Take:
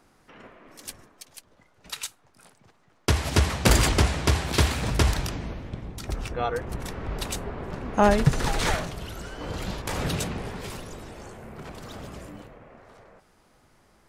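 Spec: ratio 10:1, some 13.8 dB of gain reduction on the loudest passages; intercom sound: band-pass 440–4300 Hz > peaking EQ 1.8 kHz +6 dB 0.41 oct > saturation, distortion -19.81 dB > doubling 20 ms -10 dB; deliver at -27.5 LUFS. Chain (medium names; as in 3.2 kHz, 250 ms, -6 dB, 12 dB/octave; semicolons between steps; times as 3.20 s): compression 10:1, threshold -29 dBFS; band-pass 440–4300 Hz; peaking EQ 1.8 kHz +6 dB 0.41 oct; saturation -24.5 dBFS; doubling 20 ms -10 dB; trim +12 dB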